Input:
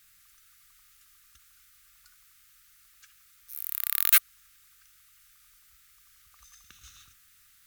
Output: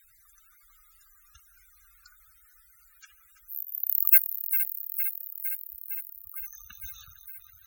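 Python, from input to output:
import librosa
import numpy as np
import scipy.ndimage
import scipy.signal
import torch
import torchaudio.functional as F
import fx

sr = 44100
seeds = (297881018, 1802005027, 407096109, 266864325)

p1 = fx.reverse_delay_fb(x, sr, ms=229, feedback_pct=83, wet_db=-11.0)
p2 = fx.ring_mod(p1, sr, carrier_hz=82.0, at=(3.62, 4.11))
p3 = 10.0 ** (-21.0 / 20.0) * np.tanh(p2 / 10.0 ** (-21.0 / 20.0))
p4 = p2 + F.gain(torch.from_numpy(p3), -5.5).numpy()
p5 = fx.spec_topn(p4, sr, count=64)
y = F.gain(torch.from_numpy(p5), 3.5).numpy()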